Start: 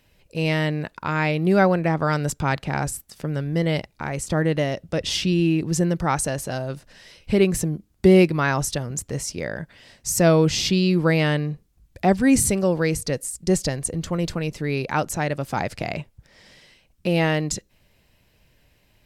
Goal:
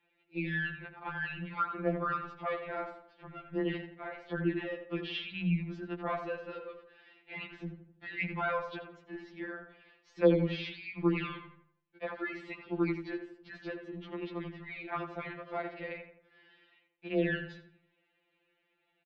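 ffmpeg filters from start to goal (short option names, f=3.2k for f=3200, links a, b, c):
-filter_complex "[0:a]highpass=f=370:t=q:w=0.5412,highpass=f=370:t=q:w=1.307,lowpass=f=3.5k:t=q:w=0.5176,lowpass=f=3.5k:t=q:w=0.7071,lowpass=f=3.5k:t=q:w=1.932,afreqshift=-150,asplit=2[a][b];[b]adelay=85,lowpass=f=2k:p=1,volume=-7.5dB,asplit=2[c][d];[d]adelay=85,lowpass=f=2k:p=1,volume=0.45,asplit=2[e][f];[f]adelay=85,lowpass=f=2k:p=1,volume=0.45,asplit=2[g][h];[h]adelay=85,lowpass=f=2k:p=1,volume=0.45,asplit=2[i][j];[j]adelay=85,lowpass=f=2k:p=1,volume=0.45[k];[a][c][e][g][i][k]amix=inputs=6:normalize=0,afftfilt=real='re*2.83*eq(mod(b,8),0)':imag='im*2.83*eq(mod(b,8),0)':win_size=2048:overlap=0.75,volume=-8dB"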